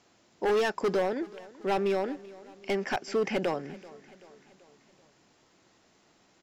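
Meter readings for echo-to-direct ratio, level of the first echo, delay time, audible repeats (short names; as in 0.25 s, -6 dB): -18.5 dB, -20.0 dB, 0.384 s, 3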